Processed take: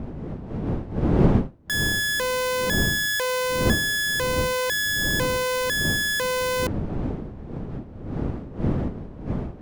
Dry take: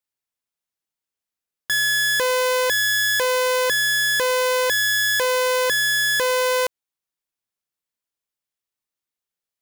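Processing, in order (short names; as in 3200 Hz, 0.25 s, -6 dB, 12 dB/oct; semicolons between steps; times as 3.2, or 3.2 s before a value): wind noise 240 Hz -23 dBFS; gain -4.5 dB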